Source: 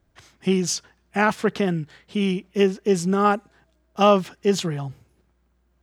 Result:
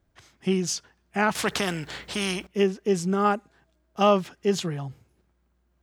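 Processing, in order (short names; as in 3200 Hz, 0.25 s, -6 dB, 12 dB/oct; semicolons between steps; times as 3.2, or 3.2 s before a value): 1.35–2.47 spectral compressor 2:1; gain -3.5 dB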